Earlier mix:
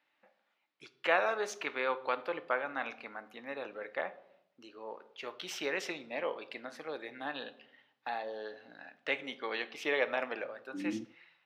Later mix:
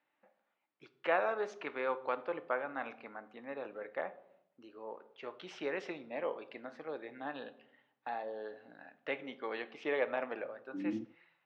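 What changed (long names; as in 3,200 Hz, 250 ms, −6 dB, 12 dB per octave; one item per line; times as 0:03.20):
first voice: add high-shelf EQ 2,100 Hz −10.5 dB
master: add high-frequency loss of the air 99 metres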